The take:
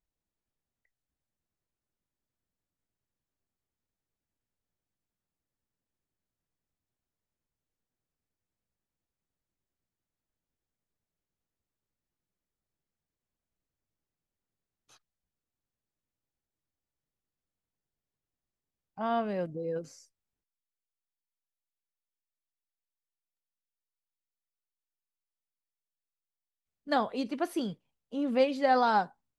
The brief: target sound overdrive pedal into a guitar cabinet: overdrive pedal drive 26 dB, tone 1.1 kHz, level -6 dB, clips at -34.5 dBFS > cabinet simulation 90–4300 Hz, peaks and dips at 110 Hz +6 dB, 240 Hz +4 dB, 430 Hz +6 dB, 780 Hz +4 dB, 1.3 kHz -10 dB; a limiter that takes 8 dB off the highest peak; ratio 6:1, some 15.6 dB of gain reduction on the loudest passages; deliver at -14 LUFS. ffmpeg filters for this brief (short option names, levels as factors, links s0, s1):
-filter_complex "[0:a]acompressor=threshold=0.0126:ratio=6,alimiter=level_in=3.55:limit=0.0631:level=0:latency=1,volume=0.282,asplit=2[s0][s1];[s1]highpass=f=720:p=1,volume=20,asoftclip=type=tanh:threshold=0.0188[s2];[s0][s2]amix=inputs=2:normalize=0,lowpass=f=1100:p=1,volume=0.501,highpass=90,equalizer=f=110:t=q:w=4:g=6,equalizer=f=240:t=q:w=4:g=4,equalizer=f=430:t=q:w=4:g=6,equalizer=f=780:t=q:w=4:g=4,equalizer=f=1300:t=q:w=4:g=-10,lowpass=f=4300:w=0.5412,lowpass=f=4300:w=1.3066,volume=21.1"